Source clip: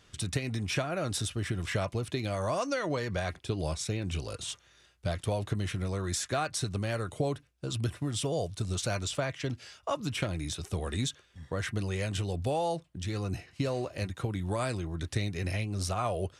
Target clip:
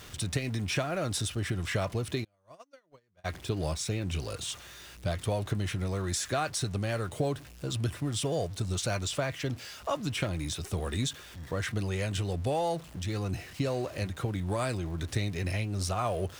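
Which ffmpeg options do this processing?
-filter_complex "[0:a]aeval=exprs='val(0)+0.5*0.00631*sgn(val(0))':c=same,asplit=3[s0][s1][s2];[s0]afade=t=out:st=2.23:d=0.02[s3];[s1]agate=range=0.00794:threshold=0.0562:ratio=16:detection=peak,afade=t=in:st=2.23:d=0.02,afade=t=out:st=3.24:d=0.02[s4];[s2]afade=t=in:st=3.24:d=0.02[s5];[s3][s4][s5]amix=inputs=3:normalize=0"

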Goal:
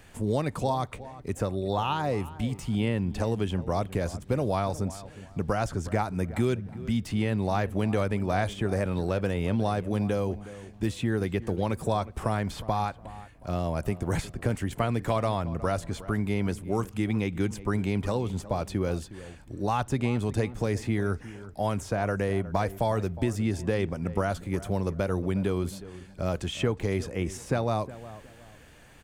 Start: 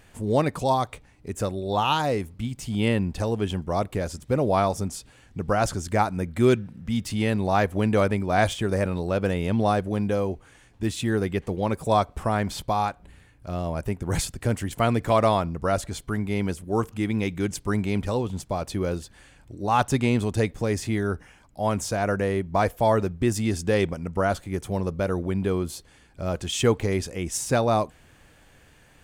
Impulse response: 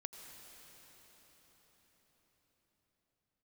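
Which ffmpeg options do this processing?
-filter_complex "[0:a]acrossover=split=120|2600[s0][s1][s2];[s0]acompressor=threshold=0.02:ratio=4[s3];[s1]acompressor=threshold=0.0447:ratio=4[s4];[s2]acompressor=threshold=0.00447:ratio=4[s5];[s3][s4][s5]amix=inputs=3:normalize=0,asplit=2[s6][s7];[s7]adelay=363,lowpass=f=1800:p=1,volume=0.168,asplit=2[s8][s9];[s9]adelay=363,lowpass=f=1800:p=1,volume=0.32,asplit=2[s10][s11];[s11]adelay=363,lowpass=f=1800:p=1,volume=0.32[s12];[s8][s10][s12]amix=inputs=3:normalize=0[s13];[s6][s13]amix=inputs=2:normalize=0,volume=1.19"

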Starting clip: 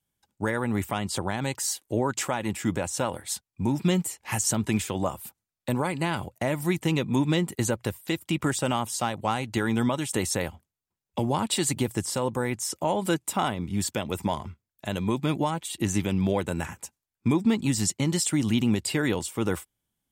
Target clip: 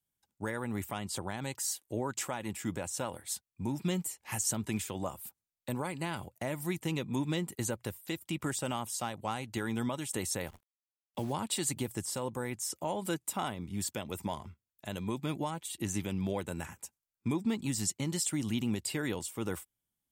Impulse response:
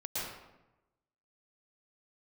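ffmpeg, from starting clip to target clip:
-filter_complex "[0:a]highshelf=f=7600:g=7,asplit=3[s0][s1][s2];[s0]afade=t=out:st=10.46:d=0.02[s3];[s1]acrusher=bits=8:dc=4:mix=0:aa=0.000001,afade=t=in:st=10.46:d=0.02,afade=t=out:st=11.32:d=0.02[s4];[s2]afade=t=in:st=11.32:d=0.02[s5];[s3][s4][s5]amix=inputs=3:normalize=0,volume=0.355"

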